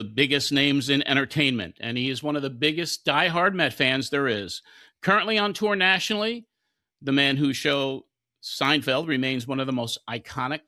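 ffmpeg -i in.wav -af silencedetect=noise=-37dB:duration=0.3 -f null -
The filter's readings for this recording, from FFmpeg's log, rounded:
silence_start: 4.59
silence_end: 5.03 | silence_duration: 0.44
silence_start: 6.39
silence_end: 7.05 | silence_duration: 0.66
silence_start: 7.99
silence_end: 8.44 | silence_duration: 0.45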